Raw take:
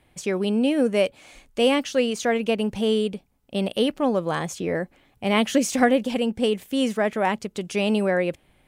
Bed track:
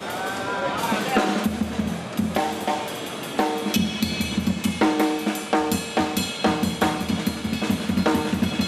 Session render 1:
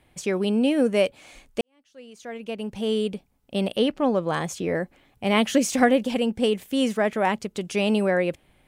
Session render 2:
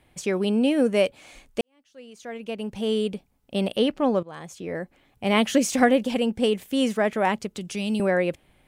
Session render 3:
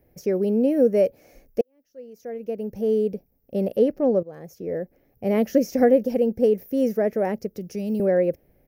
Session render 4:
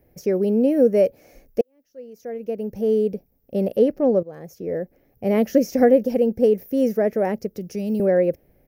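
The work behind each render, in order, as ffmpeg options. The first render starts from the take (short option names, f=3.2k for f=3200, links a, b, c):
-filter_complex "[0:a]asettb=1/sr,asplit=3[a][b][c];[a]atrim=end=3.764[d];[b]atrim=start=3.76:end=4.33,asetpts=PTS-STARTPTS,afade=t=in:d=0.004:c=qsin,afade=t=out:st=0.566:d=0.004:c=qsin,highshelf=f=8.9k:g=-12[e];[c]atrim=start=4.326[f];[d][e]acrossfade=d=0.004:c1=hsin:c2=qsin[g];[g][f]acrossfade=d=0.004:c1=qsin:c2=hsin,asplit=2[h][i];[h]atrim=end=1.61,asetpts=PTS-STARTPTS,afade=t=out:st=1.606:d=0.004:c=hsin[j];[i]atrim=start=1.61,asetpts=PTS-STARTPTS,afade=t=in:d=1.54:c=qua[k];[j][k]concat=n=2:v=0:a=1"
-filter_complex "[0:a]asettb=1/sr,asplit=3[a][b][c];[a]atrim=end=7.554[d];[b]atrim=start=7.55:end=8,asetpts=PTS-STARTPTS,afade=t=in:d=0.004:c=qsin,afade=t=out:st=0.446:d=0.004:c=qsin,acrossover=split=260|3000[e][f][g];[f]acompressor=threshold=-41dB:ratio=3:attack=3.2:release=140:knee=2.83:detection=peak[h];[e][h][g]amix=inputs=3:normalize=0[i];[c]atrim=start=7.996[j];[d][i]acrossfade=d=0.004:c1=hsin:c2=qsin[k];[k][j]acrossfade=d=0.004:c1=qsin:c2=hsin,asplit=2[l][m];[l]atrim=end=4.23,asetpts=PTS-STARTPTS,afade=t=out:st=4.226:d=0.004:c=hsin:silence=0.112202[n];[m]atrim=start=4.23,asetpts=PTS-STARTPTS,afade=t=in:d=1.08:silence=0.112202[o];[n][o]concat=n=2:v=0:a=1"
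-filter_complex "[0:a]firequalizer=gain_entry='entry(300,0);entry(490,6);entry(1000,-15);entry(1800,-8);entry(3400,-23);entry(5500,-2);entry(8000,-21);entry(14000,12)':delay=0.05:min_phase=1,acrossover=split=6400[a][b];[b]acompressor=threshold=-42dB:ratio=4:attack=1:release=60[c];[a][c]amix=inputs=2:normalize=0"
-af "volume=2dB"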